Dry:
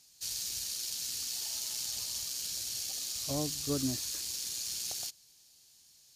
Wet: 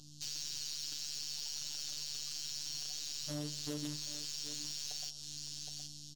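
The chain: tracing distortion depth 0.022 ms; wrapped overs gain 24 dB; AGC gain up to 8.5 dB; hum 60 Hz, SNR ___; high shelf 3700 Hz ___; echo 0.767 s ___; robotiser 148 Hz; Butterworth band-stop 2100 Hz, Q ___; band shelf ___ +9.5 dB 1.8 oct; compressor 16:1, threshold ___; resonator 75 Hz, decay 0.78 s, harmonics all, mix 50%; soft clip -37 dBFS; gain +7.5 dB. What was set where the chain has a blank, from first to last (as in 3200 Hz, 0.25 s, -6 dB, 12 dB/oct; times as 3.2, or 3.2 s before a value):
27 dB, -10.5 dB, -17 dB, 1.7, 4700 Hz, -34 dBFS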